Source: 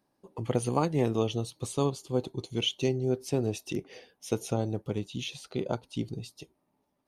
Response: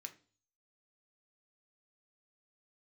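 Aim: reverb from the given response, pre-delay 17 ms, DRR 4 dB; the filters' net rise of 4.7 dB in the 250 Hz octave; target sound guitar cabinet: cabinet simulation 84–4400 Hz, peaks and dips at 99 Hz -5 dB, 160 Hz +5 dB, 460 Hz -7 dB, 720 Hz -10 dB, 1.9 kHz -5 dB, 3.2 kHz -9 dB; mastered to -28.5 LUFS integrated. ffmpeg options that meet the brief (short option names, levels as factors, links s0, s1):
-filter_complex "[0:a]equalizer=f=250:t=o:g=6,asplit=2[s0][s1];[1:a]atrim=start_sample=2205,adelay=17[s2];[s1][s2]afir=irnorm=-1:irlink=0,volume=1.12[s3];[s0][s3]amix=inputs=2:normalize=0,highpass=84,equalizer=f=99:t=q:w=4:g=-5,equalizer=f=160:t=q:w=4:g=5,equalizer=f=460:t=q:w=4:g=-7,equalizer=f=720:t=q:w=4:g=-10,equalizer=f=1900:t=q:w=4:g=-5,equalizer=f=3200:t=q:w=4:g=-9,lowpass=f=4400:w=0.5412,lowpass=f=4400:w=1.3066,volume=1.19"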